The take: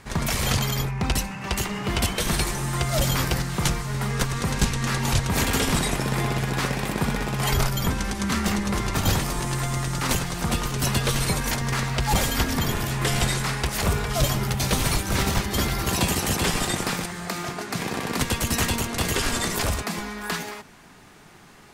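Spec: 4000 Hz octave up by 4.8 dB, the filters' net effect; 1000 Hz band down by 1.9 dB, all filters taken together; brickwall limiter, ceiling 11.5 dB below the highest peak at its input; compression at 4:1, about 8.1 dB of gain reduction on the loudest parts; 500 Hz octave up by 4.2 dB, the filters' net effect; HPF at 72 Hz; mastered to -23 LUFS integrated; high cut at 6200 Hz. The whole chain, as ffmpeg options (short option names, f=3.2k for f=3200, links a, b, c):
-af "highpass=72,lowpass=6.2k,equalizer=f=500:t=o:g=6.5,equalizer=f=1k:t=o:g=-5,equalizer=f=4k:t=o:g=7,acompressor=threshold=-27dB:ratio=4,volume=10dB,alimiter=limit=-14dB:level=0:latency=1"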